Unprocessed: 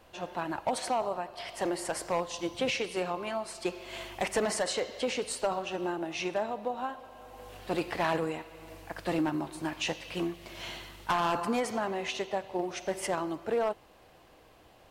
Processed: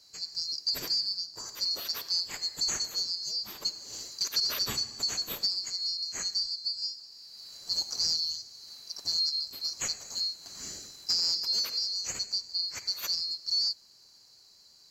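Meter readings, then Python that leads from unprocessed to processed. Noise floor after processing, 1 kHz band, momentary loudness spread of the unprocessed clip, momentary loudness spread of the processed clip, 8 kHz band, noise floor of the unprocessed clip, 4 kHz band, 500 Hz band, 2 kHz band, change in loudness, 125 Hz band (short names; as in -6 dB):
-58 dBFS, -18.5 dB, 11 LU, 13 LU, +6.0 dB, -58 dBFS, +13.0 dB, -21.5 dB, -9.5 dB, +3.5 dB, -11.0 dB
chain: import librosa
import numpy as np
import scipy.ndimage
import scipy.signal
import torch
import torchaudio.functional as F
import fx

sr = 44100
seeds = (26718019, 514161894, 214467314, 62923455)

y = fx.band_swap(x, sr, width_hz=4000)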